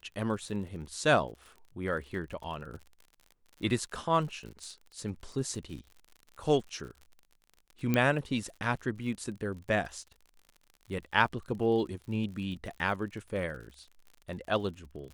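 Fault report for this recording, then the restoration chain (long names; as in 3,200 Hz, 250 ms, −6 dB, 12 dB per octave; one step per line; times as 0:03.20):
surface crackle 51 per second −42 dBFS
0:07.94: click −14 dBFS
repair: click removal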